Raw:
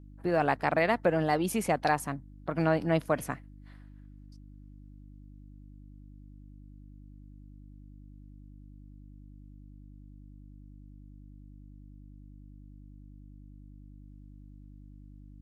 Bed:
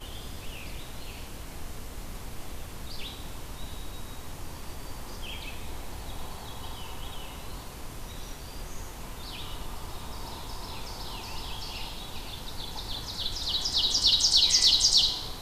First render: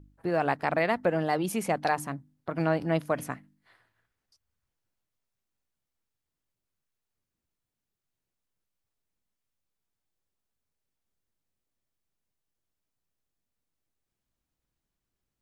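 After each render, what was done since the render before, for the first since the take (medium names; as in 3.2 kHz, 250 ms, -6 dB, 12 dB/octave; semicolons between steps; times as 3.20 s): de-hum 50 Hz, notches 6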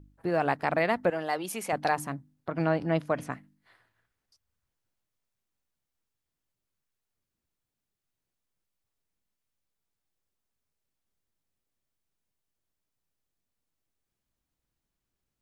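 1.10–1.73 s: high-pass 620 Hz 6 dB/octave; 2.49–3.33 s: distance through air 54 m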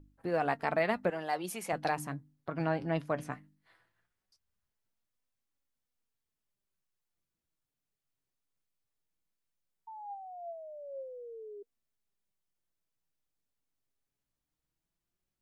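9.87–11.63 s: painted sound fall 400–900 Hz -40 dBFS; flange 0.18 Hz, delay 3.5 ms, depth 4 ms, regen +63%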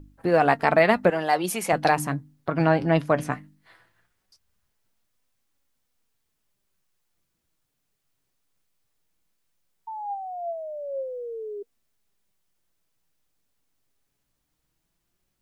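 trim +11.5 dB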